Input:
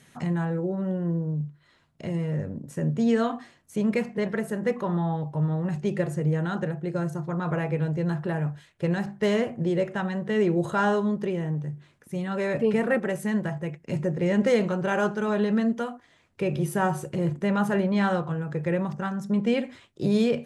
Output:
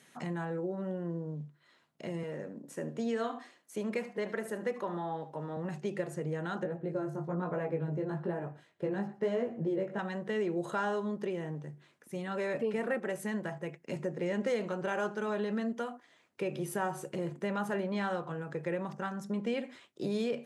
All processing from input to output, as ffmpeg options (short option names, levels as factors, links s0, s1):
-filter_complex "[0:a]asettb=1/sr,asplit=3[s0][s1][s2];[s0]atrim=end=2.234[s3];[s1]atrim=start=2.23:end=5.57,asetpts=PTS-STARTPTS,afade=t=in:d=0.004:c=qsin,afade=t=out:st=3.336:d=0.004:c=qsin,highpass=210,aecho=1:1:74:0.168,atrim=end_sample=147294[s4];[s2]atrim=start=5.566[s5];[s3][s4]acrossfade=d=0.004:c1=hsin:c2=qsin[s6];[s6][s5]acrossfade=d=0.004:c1=qsin:c2=hsin,asettb=1/sr,asplit=3[s7][s8][s9];[s7]atrim=end=6.634[s10];[s8]atrim=start=6.63:end=9.99,asetpts=PTS-STARTPTS,afade=t=in:d=0.004:c=qsin,afade=t=out:st=3.356:d=0.004:c=qsin,tiltshelf=f=1400:g=7,flanger=delay=16:depth=4.6:speed=1.1,aecho=1:1:116:0.0891,atrim=end_sample=148176[s11];[s9]atrim=start=9.986[s12];[s10][s11]acrossfade=d=0.004:c1=hsin:c2=qsin[s13];[s13][s12]acrossfade=d=0.004:c1=qsin:c2=hsin,highpass=240,acompressor=threshold=0.0355:ratio=2,volume=0.668"